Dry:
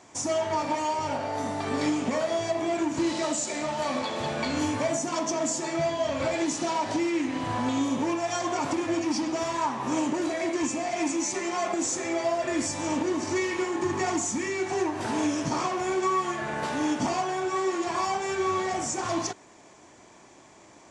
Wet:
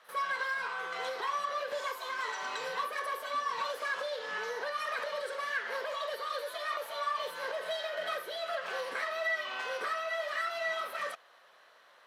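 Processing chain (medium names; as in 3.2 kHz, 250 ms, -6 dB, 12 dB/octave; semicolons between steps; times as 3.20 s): three-band isolator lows -20 dB, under 310 Hz, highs -20 dB, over 3.2 kHz; pre-echo 78 ms -16 dB; speed mistake 45 rpm record played at 78 rpm; trim -5.5 dB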